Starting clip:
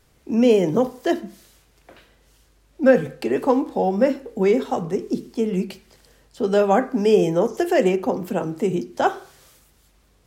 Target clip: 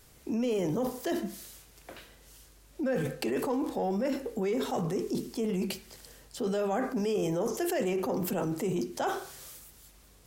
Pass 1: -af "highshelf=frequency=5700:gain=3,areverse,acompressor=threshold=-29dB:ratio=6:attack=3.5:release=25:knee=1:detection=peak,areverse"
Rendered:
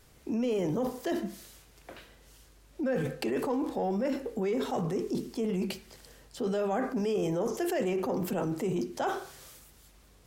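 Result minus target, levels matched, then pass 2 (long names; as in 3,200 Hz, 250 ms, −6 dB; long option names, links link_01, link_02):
8,000 Hz band −4.0 dB
-af "highshelf=frequency=5700:gain=9.5,areverse,acompressor=threshold=-29dB:ratio=6:attack=3.5:release=25:knee=1:detection=peak,areverse"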